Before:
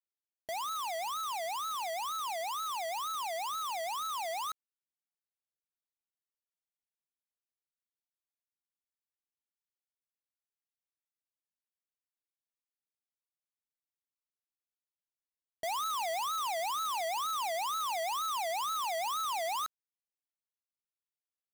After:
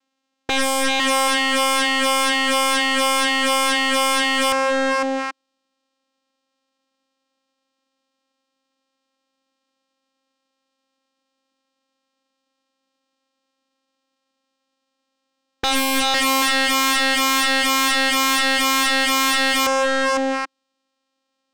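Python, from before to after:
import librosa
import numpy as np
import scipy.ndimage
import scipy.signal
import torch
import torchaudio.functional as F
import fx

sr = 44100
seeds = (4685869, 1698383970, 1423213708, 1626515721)

y = fx.vocoder(x, sr, bands=4, carrier='saw', carrier_hz=267.0)
y = fx.echo_multitap(y, sr, ms=(504, 783), db=(-8.0, -14.5))
y = fx.fold_sine(y, sr, drive_db=16, ceiling_db=-24.5)
y = F.gain(torch.from_numpy(y), 9.0).numpy()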